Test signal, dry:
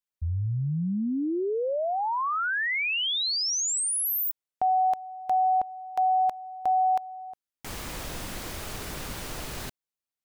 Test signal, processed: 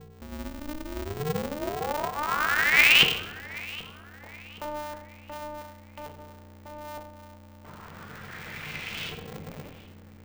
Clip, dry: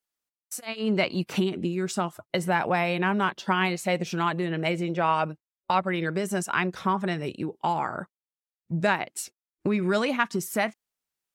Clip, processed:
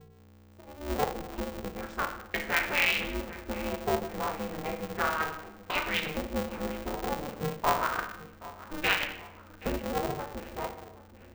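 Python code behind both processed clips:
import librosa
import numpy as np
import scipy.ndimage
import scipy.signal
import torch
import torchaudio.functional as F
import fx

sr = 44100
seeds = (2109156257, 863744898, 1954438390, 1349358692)

y = scipy.signal.lfilter([1.0, -0.9], [1.0], x)
y = fx.notch(y, sr, hz=940.0, q=6.9)
y = fx.dereverb_blind(y, sr, rt60_s=1.3)
y = fx.dynamic_eq(y, sr, hz=2000.0, q=0.91, threshold_db=-51.0, ratio=4.0, max_db=-3)
y = fx.rider(y, sr, range_db=5, speed_s=2.0)
y = fx.add_hum(y, sr, base_hz=60, snr_db=21)
y = 10.0 ** (-18.5 / 20.0) * np.tanh(y / 10.0 ** (-18.5 / 20.0))
y = fx.small_body(y, sr, hz=(300.0, 2200.0, 3200.0), ring_ms=45, db=7)
y = fx.filter_lfo_lowpass(y, sr, shape='saw_up', hz=0.33, low_hz=300.0, high_hz=3000.0, q=4.1)
y = fx.echo_filtered(y, sr, ms=775, feedback_pct=49, hz=2600.0, wet_db=-17.5)
y = fx.room_shoebox(y, sr, seeds[0], volume_m3=280.0, walls='mixed', distance_m=0.83)
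y = y * np.sign(np.sin(2.0 * np.pi * 150.0 * np.arange(len(y)) / sr))
y = F.gain(torch.from_numpy(y), 5.0).numpy()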